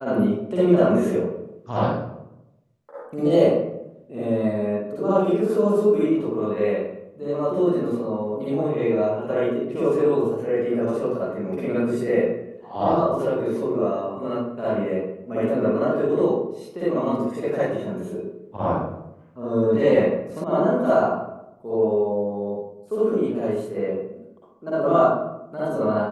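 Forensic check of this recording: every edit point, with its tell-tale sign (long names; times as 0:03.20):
0:20.44: cut off before it has died away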